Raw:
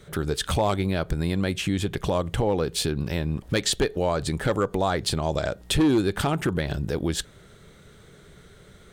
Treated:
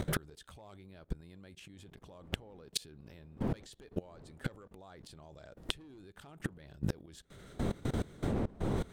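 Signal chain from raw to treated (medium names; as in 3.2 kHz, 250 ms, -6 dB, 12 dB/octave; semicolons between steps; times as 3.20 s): wind noise 310 Hz -36 dBFS; inverted gate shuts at -17 dBFS, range -28 dB; level held to a coarse grid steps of 21 dB; trim +10 dB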